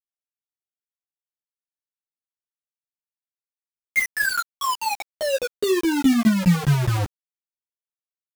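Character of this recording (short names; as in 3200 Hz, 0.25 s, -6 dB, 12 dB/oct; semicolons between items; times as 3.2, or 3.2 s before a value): phasing stages 6, 2.5 Hz, lowest notch 560–1800 Hz; tremolo saw down 4.8 Hz, depth 90%; a quantiser's noise floor 6-bit, dither none; a shimmering, thickened sound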